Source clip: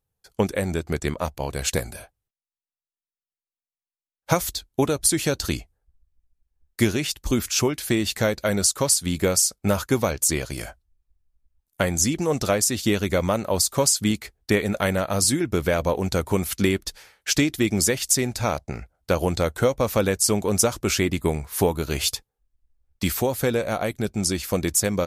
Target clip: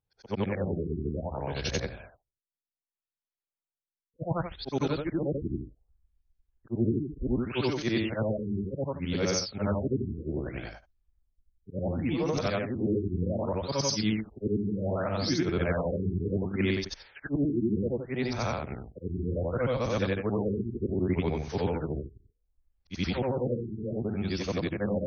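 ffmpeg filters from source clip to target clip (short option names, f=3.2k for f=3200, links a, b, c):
-filter_complex "[0:a]afftfilt=real='re':imag='-im':win_size=8192:overlap=0.75,acrossover=split=260|1400|2200[a][b][c][d];[b]alimiter=limit=-22.5dB:level=0:latency=1:release=130[e];[a][e][c][d]amix=inputs=4:normalize=0,afftfilt=real='re*lt(b*sr/1024,410*pow(6600/410,0.5+0.5*sin(2*PI*0.66*pts/sr)))':imag='im*lt(b*sr/1024,410*pow(6600/410,0.5+0.5*sin(2*PI*0.66*pts/sr)))':win_size=1024:overlap=0.75"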